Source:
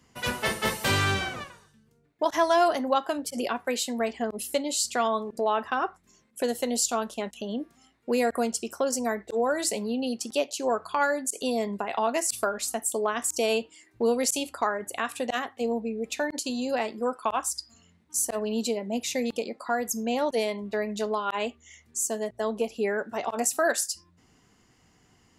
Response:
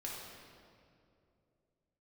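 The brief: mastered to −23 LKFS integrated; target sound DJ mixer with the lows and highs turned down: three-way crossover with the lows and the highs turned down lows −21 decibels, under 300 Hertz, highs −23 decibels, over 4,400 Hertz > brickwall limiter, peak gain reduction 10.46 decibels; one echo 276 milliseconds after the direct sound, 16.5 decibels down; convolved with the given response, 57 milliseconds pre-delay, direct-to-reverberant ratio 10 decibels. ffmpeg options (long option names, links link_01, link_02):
-filter_complex "[0:a]aecho=1:1:276:0.15,asplit=2[link_01][link_02];[1:a]atrim=start_sample=2205,adelay=57[link_03];[link_02][link_03]afir=irnorm=-1:irlink=0,volume=-10dB[link_04];[link_01][link_04]amix=inputs=2:normalize=0,acrossover=split=300 4400:gain=0.0891 1 0.0708[link_05][link_06][link_07];[link_05][link_06][link_07]amix=inputs=3:normalize=0,volume=9.5dB,alimiter=limit=-12.5dB:level=0:latency=1"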